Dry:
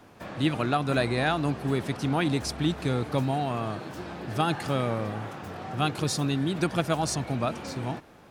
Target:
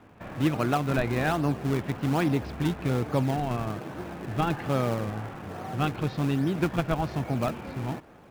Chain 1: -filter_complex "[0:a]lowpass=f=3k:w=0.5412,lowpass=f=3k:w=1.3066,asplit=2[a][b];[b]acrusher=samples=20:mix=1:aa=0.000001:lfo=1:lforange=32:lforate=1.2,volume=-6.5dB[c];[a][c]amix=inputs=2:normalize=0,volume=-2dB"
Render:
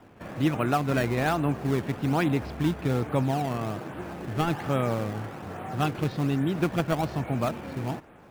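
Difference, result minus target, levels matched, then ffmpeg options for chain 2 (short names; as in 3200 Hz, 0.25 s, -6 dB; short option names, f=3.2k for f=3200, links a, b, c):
decimation with a swept rate: distortion -4 dB
-filter_complex "[0:a]lowpass=f=3k:w=0.5412,lowpass=f=3k:w=1.3066,asplit=2[a][b];[b]acrusher=samples=41:mix=1:aa=0.000001:lfo=1:lforange=65.6:lforate=1.2,volume=-6.5dB[c];[a][c]amix=inputs=2:normalize=0,volume=-2dB"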